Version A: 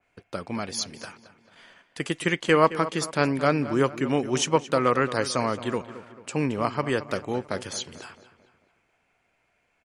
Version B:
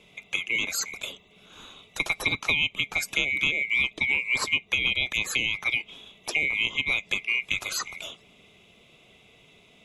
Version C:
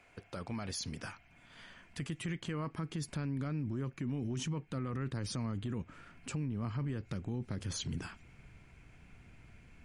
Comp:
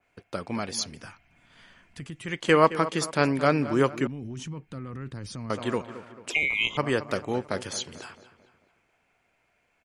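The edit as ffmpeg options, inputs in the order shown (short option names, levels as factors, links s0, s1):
-filter_complex "[2:a]asplit=2[s0][s1];[0:a]asplit=4[s2][s3][s4][s5];[s2]atrim=end=1.03[s6];[s0]atrim=start=0.79:end=2.47[s7];[s3]atrim=start=2.23:end=4.072[s8];[s1]atrim=start=4.068:end=5.502[s9];[s4]atrim=start=5.498:end=6.302[s10];[1:a]atrim=start=6.298:end=6.772[s11];[s5]atrim=start=6.768[s12];[s6][s7]acrossfade=d=0.24:c1=tri:c2=tri[s13];[s13][s8]acrossfade=d=0.24:c1=tri:c2=tri[s14];[s14][s9]acrossfade=d=0.004:c1=hsin:c2=hsin[s15];[s15][s10]acrossfade=d=0.004:c1=hsin:c2=hsin[s16];[s16][s11]acrossfade=d=0.004:c1=hsin:c2=hsin[s17];[s17][s12]acrossfade=d=0.004:c1=hsin:c2=hsin"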